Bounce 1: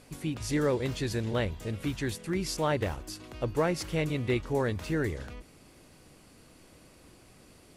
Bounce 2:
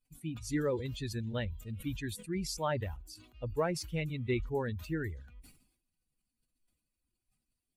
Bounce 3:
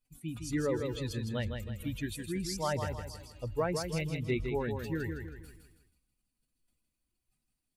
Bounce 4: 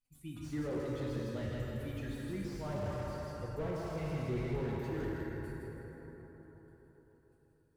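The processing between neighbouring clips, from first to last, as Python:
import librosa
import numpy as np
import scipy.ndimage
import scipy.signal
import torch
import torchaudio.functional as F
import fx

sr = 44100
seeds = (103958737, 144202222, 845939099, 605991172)

y1 = fx.bin_expand(x, sr, power=2.0)
y1 = fx.sustainer(y1, sr, db_per_s=86.0)
y1 = y1 * librosa.db_to_amplitude(-1.5)
y2 = fx.echo_feedback(y1, sr, ms=160, feedback_pct=40, wet_db=-6.0)
y3 = fx.rev_plate(y2, sr, seeds[0], rt60_s=4.6, hf_ratio=0.4, predelay_ms=0, drr_db=-1.5)
y3 = fx.slew_limit(y3, sr, full_power_hz=18.0)
y3 = y3 * librosa.db_to_amplitude(-6.5)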